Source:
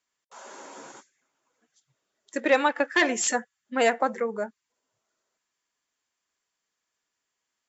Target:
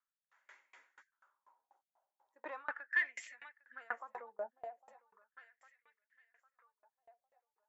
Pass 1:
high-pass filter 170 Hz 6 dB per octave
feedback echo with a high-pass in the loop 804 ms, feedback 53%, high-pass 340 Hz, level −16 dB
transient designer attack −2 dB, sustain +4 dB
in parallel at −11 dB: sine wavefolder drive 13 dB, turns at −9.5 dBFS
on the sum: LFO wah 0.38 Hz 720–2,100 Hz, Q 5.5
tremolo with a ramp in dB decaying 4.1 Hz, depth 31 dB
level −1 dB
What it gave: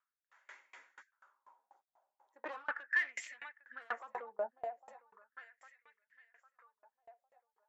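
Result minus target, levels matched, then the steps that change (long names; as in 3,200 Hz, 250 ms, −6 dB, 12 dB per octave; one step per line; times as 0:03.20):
sine wavefolder: distortion +21 dB
change: sine wavefolder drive 2 dB, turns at −9.5 dBFS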